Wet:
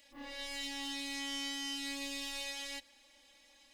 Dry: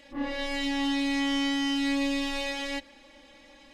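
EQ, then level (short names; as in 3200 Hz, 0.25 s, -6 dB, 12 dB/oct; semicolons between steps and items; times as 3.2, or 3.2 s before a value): pre-emphasis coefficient 0.9; low shelf 140 Hz +4 dB; bell 740 Hz +3.5 dB 0.91 oct; 0.0 dB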